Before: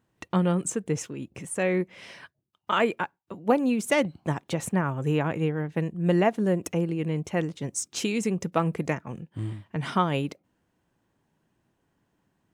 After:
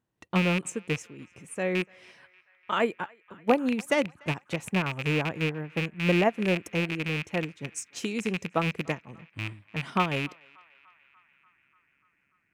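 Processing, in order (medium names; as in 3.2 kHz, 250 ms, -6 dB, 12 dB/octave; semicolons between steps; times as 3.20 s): rattle on loud lows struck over -28 dBFS, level -16 dBFS; band-passed feedback delay 293 ms, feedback 79%, band-pass 1.7 kHz, level -17 dB; upward expansion 1.5:1, over -36 dBFS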